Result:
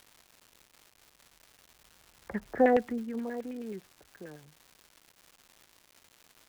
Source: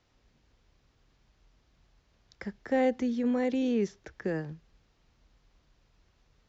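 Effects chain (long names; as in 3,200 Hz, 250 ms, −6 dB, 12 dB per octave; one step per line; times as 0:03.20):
source passing by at 0:02.48, 17 m/s, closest 2.5 metres
auto-filter low-pass saw down 9.4 Hz 600–2,400 Hz
surface crackle 380 per second −49 dBFS
level +5 dB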